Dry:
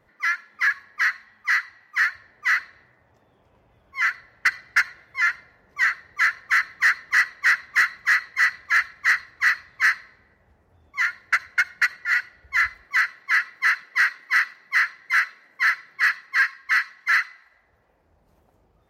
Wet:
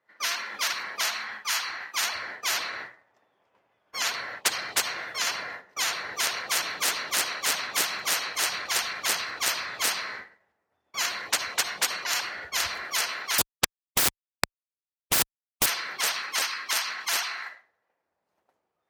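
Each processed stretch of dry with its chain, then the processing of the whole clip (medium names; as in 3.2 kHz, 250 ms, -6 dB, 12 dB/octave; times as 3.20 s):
13.38–15.66 s: LFO low-pass square 1.9 Hz 420–1500 Hz + treble shelf 4.6 kHz -7.5 dB + Schmitt trigger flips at -19.5 dBFS
whole clip: frequency weighting A; expander -48 dBFS; spectrum-flattening compressor 10:1; trim +6.5 dB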